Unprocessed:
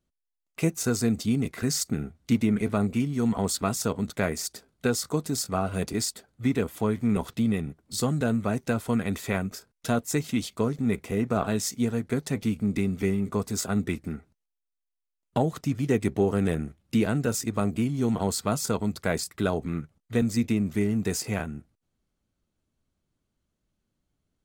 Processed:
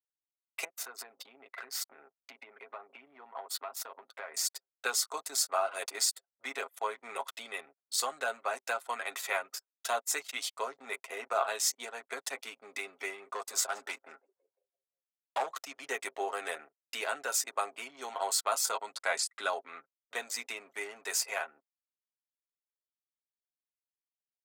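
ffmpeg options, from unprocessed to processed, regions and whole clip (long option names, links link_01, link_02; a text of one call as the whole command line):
ffmpeg -i in.wav -filter_complex "[0:a]asettb=1/sr,asplit=3[link_01][link_02][link_03];[link_01]atrim=end=0.644[link_04];[link_02]atrim=start=0.64:end=4.34,asetpts=PTS-STARTPTS,afade=type=in:duration=0.004:curve=qsin,afade=type=out:start_time=3.696:duration=0.004:curve=qsin,equalizer=frequency=7100:width=0.86:gain=-12,acompressor=threshold=-30dB:ratio=12:attack=3.2:release=140:knee=1:detection=peak[link_05];[link_03]atrim=start=4.336[link_06];[link_04][link_05]acrossfade=duration=0.004:curve1=hsin:curve2=qsin[link_07];[link_07][link_06]acrossfade=duration=0.004:curve1=qsin:curve2=hsin,asettb=1/sr,asplit=3[link_08][link_09][link_10];[link_08]atrim=end=13.314[link_11];[link_09]atrim=start=13.31:end=15.48,asetpts=PTS-STARTPTS,afade=type=in:duration=0.004:curve=qsin,afade=type=out:start_time=2.166:duration=0.004:curve=qsin,asplit=6[link_12][link_13][link_14][link_15][link_16][link_17];[link_13]adelay=170,afreqshift=60,volume=-21.5dB[link_18];[link_14]adelay=340,afreqshift=120,volume=-25.2dB[link_19];[link_15]adelay=510,afreqshift=180,volume=-29dB[link_20];[link_16]adelay=680,afreqshift=240,volume=-32.7dB[link_21];[link_17]adelay=850,afreqshift=300,volume=-36.5dB[link_22];[link_12][link_18][link_19][link_20][link_21][link_22]amix=inputs=6:normalize=0,atrim=end_sample=95697,volume=20dB,asoftclip=hard,volume=-20dB[link_23];[link_10]atrim=start=15.476[link_24];[link_11][link_23]acrossfade=duration=0.004:curve1=hsin:curve2=qsin[link_25];[link_25][link_24]acrossfade=duration=0.004:curve1=qsin:curve2=hsin,asettb=1/sr,asplit=3[link_26][link_27][link_28];[link_26]atrim=end=18.724[link_29];[link_27]atrim=start=18.72:end=19.5,asetpts=PTS-STARTPTS,afade=type=in:duration=0.004:curve=qsin,afade=type=out:start_time=0.776:duration=0.004:curve=qsin,lowpass=frequency=11000:width=0.5412,lowpass=frequency=11000:width=1.3066,asubboost=boost=11:cutoff=230[link_30];[link_28]atrim=start=19.496[link_31];[link_29][link_30]acrossfade=duration=0.004:curve1=hsin:curve2=qsin[link_32];[link_32][link_31]acrossfade=duration=0.004:curve1=qsin:curve2=hsin,anlmdn=0.398,highpass=frequency=660:width=0.5412,highpass=frequency=660:width=1.3066,aecho=1:1:7.4:0.51" out.wav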